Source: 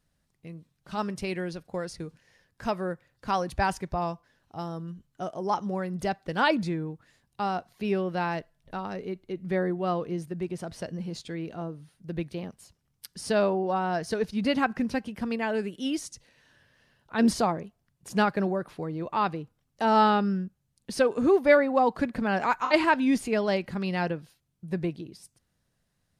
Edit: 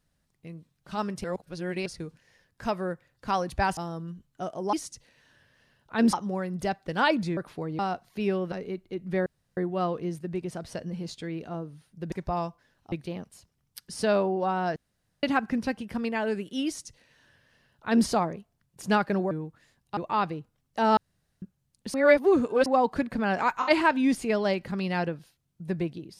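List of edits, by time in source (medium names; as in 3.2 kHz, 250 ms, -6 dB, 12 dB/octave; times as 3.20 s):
1.24–1.86 s: reverse
3.77–4.57 s: move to 12.19 s
6.77–7.43 s: swap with 18.58–19.00 s
8.16–8.90 s: delete
9.64 s: insert room tone 0.31 s
14.03–14.50 s: room tone
15.93–17.33 s: copy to 5.53 s
20.00–20.45 s: room tone
20.97–21.69 s: reverse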